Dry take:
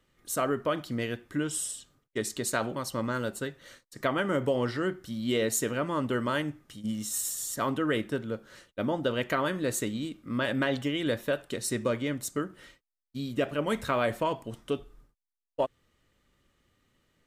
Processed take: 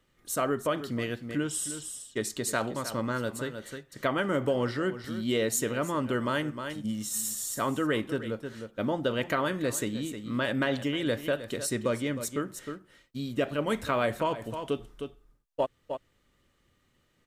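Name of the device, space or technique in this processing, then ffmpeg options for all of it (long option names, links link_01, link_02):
ducked delay: -filter_complex "[0:a]asplit=3[link_01][link_02][link_03];[link_02]adelay=310,volume=-7dB[link_04];[link_03]apad=whole_len=775248[link_05];[link_04][link_05]sidechaincompress=threshold=-36dB:ratio=8:attack=5.3:release=155[link_06];[link_01][link_06]amix=inputs=2:normalize=0"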